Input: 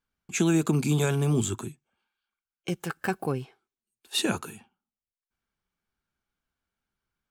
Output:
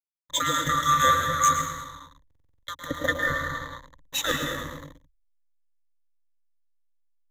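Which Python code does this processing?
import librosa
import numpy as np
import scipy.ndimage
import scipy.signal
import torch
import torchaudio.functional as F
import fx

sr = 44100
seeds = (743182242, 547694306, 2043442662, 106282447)

y = fx.band_swap(x, sr, width_hz=1000)
y = fx.peak_eq(y, sr, hz=120.0, db=7.5, octaves=2.2)
y = fx.notch(y, sr, hz=1100.0, q=13.0)
y = fx.echo_feedback(y, sr, ms=108, feedback_pct=36, wet_db=-9.0)
y = fx.rev_plate(y, sr, seeds[0], rt60_s=1.9, hf_ratio=0.6, predelay_ms=110, drr_db=3.0)
y = fx.backlash(y, sr, play_db=-31.0)
y = fx.ripple_eq(y, sr, per_octave=1.1, db=17)
y = fx.buffer_glitch(y, sr, at_s=(2.26,), block=2048, repeats=7)
y = fx.band_widen(y, sr, depth_pct=40, at=(0.81, 2.93))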